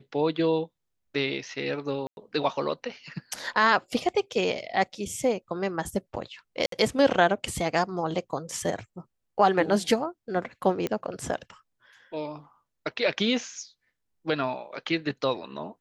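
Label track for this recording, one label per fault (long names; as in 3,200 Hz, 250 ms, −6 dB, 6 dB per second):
2.070000	2.170000	drop-out 101 ms
6.660000	6.720000	drop-out 63 ms
10.870000	10.870000	click −15 dBFS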